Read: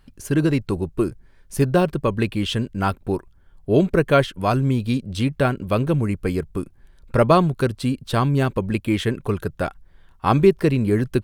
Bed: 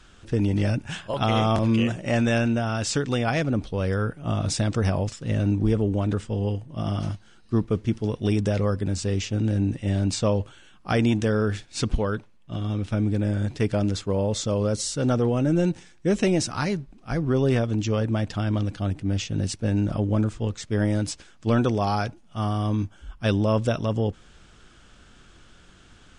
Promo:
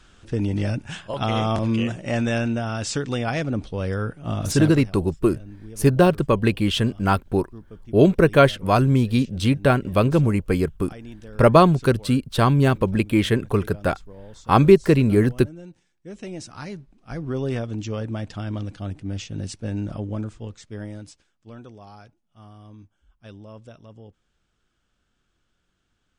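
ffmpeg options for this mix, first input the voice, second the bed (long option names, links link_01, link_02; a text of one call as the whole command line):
ffmpeg -i stem1.wav -i stem2.wav -filter_complex "[0:a]adelay=4250,volume=2dB[link_01];[1:a]volume=13.5dB,afade=type=out:start_time=4.59:duration=0.27:silence=0.125893,afade=type=in:start_time=15.99:duration=1.38:silence=0.188365,afade=type=out:start_time=19.85:duration=1.52:silence=0.158489[link_02];[link_01][link_02]amix=inputs=2:normalize=0" out.wav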